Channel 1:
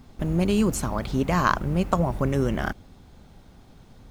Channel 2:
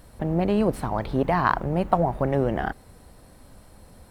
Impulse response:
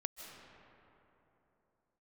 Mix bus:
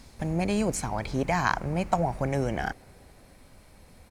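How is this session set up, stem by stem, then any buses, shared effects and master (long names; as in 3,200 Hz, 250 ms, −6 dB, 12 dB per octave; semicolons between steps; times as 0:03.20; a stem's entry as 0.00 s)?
−3.5 dB, 0.00 s, no send, flat-topped bell 6,500 Hz +14 dB; automatic ducking −12 dB, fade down 0.35 s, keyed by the second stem
−5.0 dB, 1.5 ms, send −23 dB, no processing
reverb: on, RT60 3.3 s, pre-delay 115 ms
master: parametric band 2,300 Hz +9.5 dB 0.54 octaves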